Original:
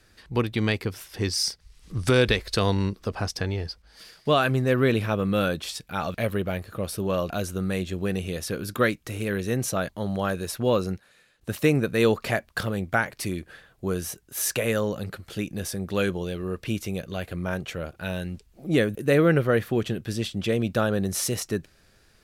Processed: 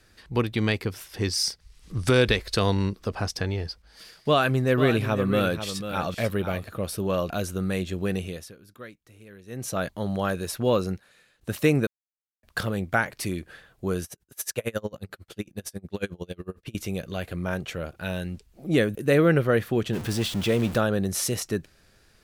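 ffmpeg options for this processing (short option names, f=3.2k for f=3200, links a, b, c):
-filter_complex "[0:a]asettb=1/sr,asplit=3[a][b][c];[a]atrim=end=4.284[d];[b]atrim=start=4.28:end=6.69,asetpts=PTS-STARTPTS,afade=t=in:d=0.004:c=qsin,afade=t=out:st=2.406:d=0.004:c=qsin,aecho=1:1:493:0.316,atrim=end_sample=106281[e];[c]atrim=start=6.686[f];[d][e]acrossfade=d=0.004:c1=hsin:c2=qsin[g];[g][f]acrossfade=d=0.004:c1=qsin:c2=hsin,asettb=1/sr,asplit=3[h][i][j];[h]atrim=end=14.044[k];[i]atrim=start=14.04:end=16.75,asetpts=PTS-STARTPTS,afade=t=in:d=0.004:c=qsin,afade=t=out:st=2.706:d=0.004:c=qsin,aeval=exprs='val(0)*pow(10,-32*(0.5-0.5*cos(2*PI*11*n/s))/20)':c=same[l];[j]atrim=start=16.746[m];[k][l]acrossfade=d=0.004:c1=hsin:c2=qsin[n];[n][m]acrossfade=d=0.004:c1=qsin:c2=hsin,asettb=1/sr,asplit=3[o][p][q];[o]atrim=end=19.934[r];[p]atrim=start=19.93:end=20.78,asetpts=PTS-STARTPTS,afade=t=in:d=0.004:c=qsin,afade=t=out:st=0.846:d=0.004:c=qsin,aeval=exprs='val(0)+0.5*0.0282*sgn(val(0))':c=same[s];[q]atrim=start=20.776[t];[r][s]acrossfade=d=0.004:c1=hsin:c2=qsin[u];[u][t]acrossfade=d=0.004:c1=qsin:c2=hsin,asplit=5[v][w][x][y][z];[v]atrim=end=8.54,asetpts=PTS-STARTPTS,afade=t=out:st=8.16:d=0.38:silence=0.1[aa];[w]atrim=start=8.54:end=9.46,asetpts=PTS-STARTPTS,volume=-20dB[ab];[x]atrim=start=9.46:end=11.87,asetpts=PTS-STARTPTS,afade=t=in:d=0.38:silence=0.1,afade=t=out:st=2.406:d=0.004:c=hsin[ac];[y]atrim=start=11.87:end=12.43,asetpts=PTS-STARTPTS,volume=0[ad];[z]atrim=start=12.43,asetpts=PTS-STARTPTS,afade=t=in:d=0.004:c=hsin[ae];[aa][ab][ac][ad][ae]concat=n=5:v=0:a=1"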